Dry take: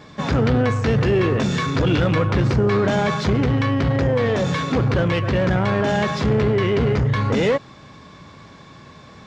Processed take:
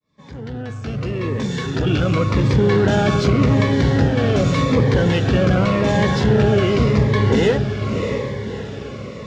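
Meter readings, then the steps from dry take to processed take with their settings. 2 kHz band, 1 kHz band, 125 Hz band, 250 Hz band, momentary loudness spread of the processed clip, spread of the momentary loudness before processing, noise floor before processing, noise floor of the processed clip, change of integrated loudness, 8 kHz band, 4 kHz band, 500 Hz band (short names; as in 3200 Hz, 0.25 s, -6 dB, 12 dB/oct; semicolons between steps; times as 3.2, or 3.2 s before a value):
+0.5 dB, 0.0 dB, +2.5 dB, +2.5 dB, 13 LU, 2 LU, -44 dBFS, -32 dBFS, +2.0 dB, n/a, +2.0 dB, +1.5 dB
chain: opening faded in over 2.73 s; diffused feedback echo 0.642 s, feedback 49%, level -6 dB; cascading phaser falling 0.87 Hz; gain +3 dB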